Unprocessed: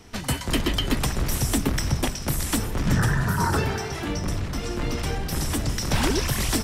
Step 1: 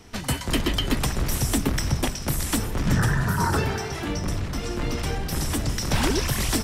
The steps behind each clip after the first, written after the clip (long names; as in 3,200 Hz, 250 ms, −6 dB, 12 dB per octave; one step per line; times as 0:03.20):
no processing that can be heard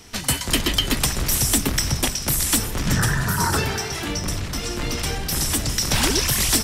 high-shelf EQ 2,300 Hz +10 dB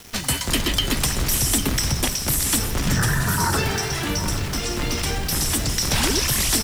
in parallel at 0 dB: brickwall limiter −15.5 dBFS, peak gain reduction 10 dB
on the sum: bit-depth reduction 6 bits, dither none
single-tap delay 800 ms −12.5 dB
level −4.5 dB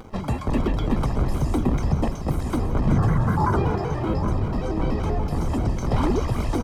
Savitzky-Golay smoothing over 65 samples
upward compression, threshold −40 dBFS
pitch modulation by a square or saw wave square 5.2 Hz, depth 160 cents
level +2.5 dB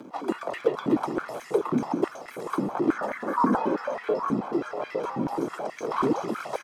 frequency shifter +100 Hz
high-pass on a step sequencer 9.3 Hz 260–1,900 Hz
level −6 dB